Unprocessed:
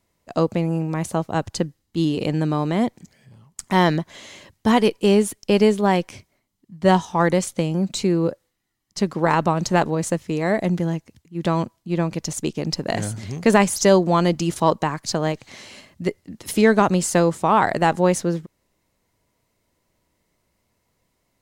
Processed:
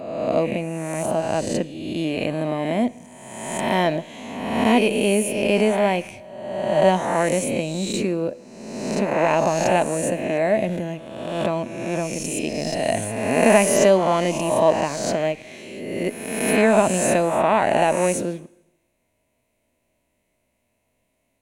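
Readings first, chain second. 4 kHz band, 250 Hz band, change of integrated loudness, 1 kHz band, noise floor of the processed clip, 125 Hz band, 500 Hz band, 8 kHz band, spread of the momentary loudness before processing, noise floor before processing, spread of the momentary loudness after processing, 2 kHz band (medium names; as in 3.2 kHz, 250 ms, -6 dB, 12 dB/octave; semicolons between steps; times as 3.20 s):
-0.5 dB, -2.5 dB, -0.5 dB, -1.0 dB, -71 dBFS, -5.5 dB, +2.0 dB, +2.0 dB, 12 LU, -72 dBFS, 13 LU, +1.0 dB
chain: reverse spectral sustain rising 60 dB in 1.31 s; graphic EQ with 31 bands 160 Hz -3 dB, 250 Hz +7 dB, 630 Hz +10 dB, 1.25 kHz -6 dB, 2.5 kHz +10 dB, 5 kHz -8 dB, 10 kHz +6 dB; Schroeder reverb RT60 0.9 s, combs from 25 ms, DRR 18.5 dB; trim -6 dB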